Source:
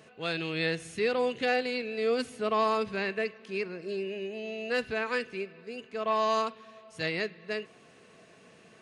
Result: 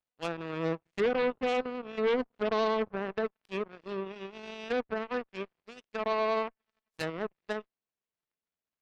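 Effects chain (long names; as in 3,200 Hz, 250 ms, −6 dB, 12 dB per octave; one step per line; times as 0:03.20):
treble cut that deepens with the level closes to 790 Hz, closed at −28 dBFS
harmonic generator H 5 −9 dB, 6 −35 dB, 7 −8 dB, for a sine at −19 dBFS
level −1.5 dB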